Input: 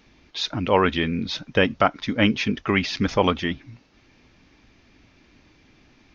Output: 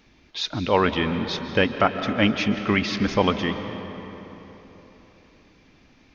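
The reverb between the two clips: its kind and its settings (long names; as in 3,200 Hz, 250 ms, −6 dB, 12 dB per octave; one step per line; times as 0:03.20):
comb and all-pass reverb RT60 3.9 s, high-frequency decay 0.6×, pre-delay 105 ms, DRR 8.5 dB
level −1 dB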